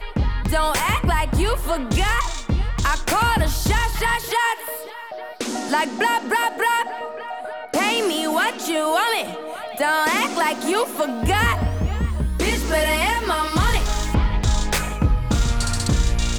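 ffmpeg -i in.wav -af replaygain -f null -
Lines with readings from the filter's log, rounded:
track_gain = +3.1 dB
track_peak = 0.254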